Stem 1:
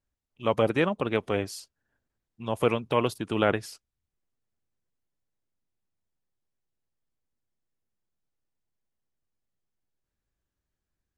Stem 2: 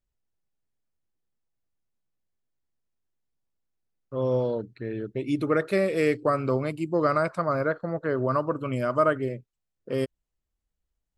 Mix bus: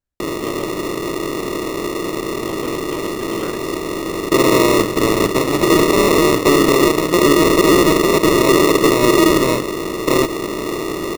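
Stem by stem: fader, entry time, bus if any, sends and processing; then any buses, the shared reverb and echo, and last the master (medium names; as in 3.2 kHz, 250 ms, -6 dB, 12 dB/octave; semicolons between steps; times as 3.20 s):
-1.5 dB, 0.00 s, muted 0.64–2.09 s, no send, compression, threshold -26 dBFS, peak gain reduction 9.5 dB
+0.5 dB, 0.20 s, no send, spectral levelling over time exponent 0.2; peaking EQ 1.2 kHz +15 dB 0.37 oct; sample-and-hold 28×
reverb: none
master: peak limiter -4.5 dBFS, peak gain reduction 8 dB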